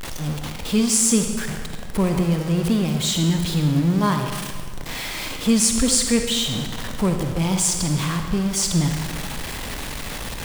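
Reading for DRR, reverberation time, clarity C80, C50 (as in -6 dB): 4.0 dB, 1.8 s, 6.0 dB, 4.5 dB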